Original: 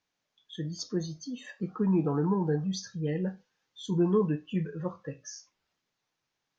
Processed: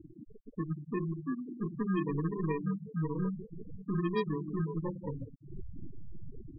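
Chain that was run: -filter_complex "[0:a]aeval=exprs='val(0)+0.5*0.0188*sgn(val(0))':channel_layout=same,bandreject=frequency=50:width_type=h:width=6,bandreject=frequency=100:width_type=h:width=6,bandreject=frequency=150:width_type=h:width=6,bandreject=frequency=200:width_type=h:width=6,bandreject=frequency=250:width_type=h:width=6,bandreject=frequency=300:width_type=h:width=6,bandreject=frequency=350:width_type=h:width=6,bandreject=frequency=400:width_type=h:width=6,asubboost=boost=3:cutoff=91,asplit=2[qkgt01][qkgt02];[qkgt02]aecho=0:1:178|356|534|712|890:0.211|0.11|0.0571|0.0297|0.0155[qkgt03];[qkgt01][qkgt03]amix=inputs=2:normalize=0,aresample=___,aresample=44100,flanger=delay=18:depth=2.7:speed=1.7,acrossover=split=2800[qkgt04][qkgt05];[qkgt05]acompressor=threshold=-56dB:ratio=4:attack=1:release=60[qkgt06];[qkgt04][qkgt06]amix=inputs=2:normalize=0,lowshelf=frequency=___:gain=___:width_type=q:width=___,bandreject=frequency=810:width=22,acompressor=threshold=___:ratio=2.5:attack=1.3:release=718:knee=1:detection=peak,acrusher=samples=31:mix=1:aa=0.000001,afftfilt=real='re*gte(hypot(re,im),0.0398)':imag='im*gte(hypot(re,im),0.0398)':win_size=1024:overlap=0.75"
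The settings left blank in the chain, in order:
32000, 530, 9, 1.5, -32dB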